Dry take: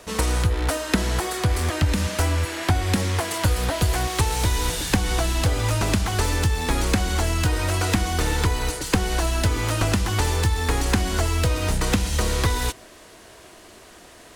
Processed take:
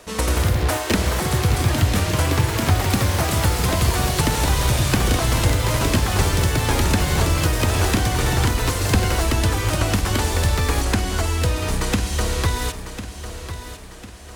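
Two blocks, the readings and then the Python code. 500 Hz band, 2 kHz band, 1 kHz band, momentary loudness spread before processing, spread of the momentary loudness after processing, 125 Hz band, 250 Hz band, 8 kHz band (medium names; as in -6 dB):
+3.0 dB, +2.5 dB, +3.0 dB, 2 LU, 7 LU, +3.5 dB, +2.5 dB, +2.5 dB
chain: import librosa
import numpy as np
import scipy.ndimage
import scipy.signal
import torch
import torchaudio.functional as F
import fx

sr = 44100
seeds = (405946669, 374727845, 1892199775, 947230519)

p1 = fx.echo_pitch(x, sr, ms=118, semitones=3, count=3, db_per_echo=-3.0)
y = p1 + fx.echo_feedback(p1, sr, ms=1050, feedback_pct=42, wet_db=-11.5, dry=0)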